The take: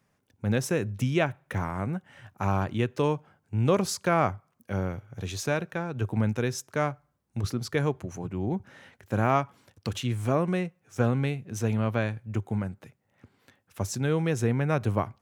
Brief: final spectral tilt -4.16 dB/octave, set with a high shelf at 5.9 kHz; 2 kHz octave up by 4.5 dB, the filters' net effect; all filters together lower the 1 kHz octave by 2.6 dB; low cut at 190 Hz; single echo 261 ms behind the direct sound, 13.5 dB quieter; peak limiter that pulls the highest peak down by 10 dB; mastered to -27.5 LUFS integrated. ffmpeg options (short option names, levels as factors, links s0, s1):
-af "highpass=190,equalizer=f=1000:t=o:g=-6,equalizer=f=2000:t=o:g=7,highshelf=f=5900:g=9,alimiter=limit=0.119:level=0:latency=1,aecho=1:1:261:0.211,volume=1.78"